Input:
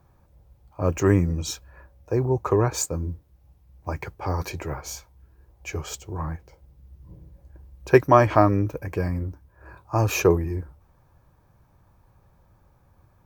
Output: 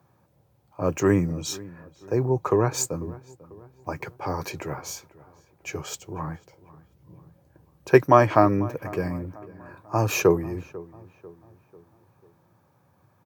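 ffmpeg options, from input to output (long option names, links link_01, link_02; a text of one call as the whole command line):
ffmpeg -i in.wav -filter_complex "[0:a]highpass=frequency=110:width=0.5412,highpass=frequency=110:width=1.3066,asplit=2[link_01][link_02];[link_02]adelay=494,lowpass=frequency=1900:poles=1,volume=-19.5dB,asplit=2[link_03][link_04];[link_04]adelay=494,lowpass=frequency=1900:poles=1,volume=0.47,asplit=2[link_05][link_06];[link_06]adelay=494,lowpass=frequency=1900:poles=1,volume=0.47,asplit=2[link_07][link_08];[link_08]adelay=494,lowpass=frequency=1900:poles=1,volume=0.47[link_09];[link_01][link_03][link_05][link_07][link_09]amix=inputs=5:normalize=0" out.wav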